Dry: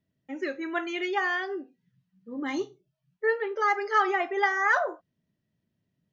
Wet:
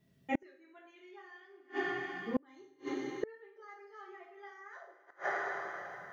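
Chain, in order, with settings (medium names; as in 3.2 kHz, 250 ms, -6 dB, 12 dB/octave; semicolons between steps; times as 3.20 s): two-slope reverb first 0.47 s, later 3.1 s, from -18 dB, DRR -4 dB; inverted gate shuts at -24 dBFS, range -37 dB; trim +4.5 dB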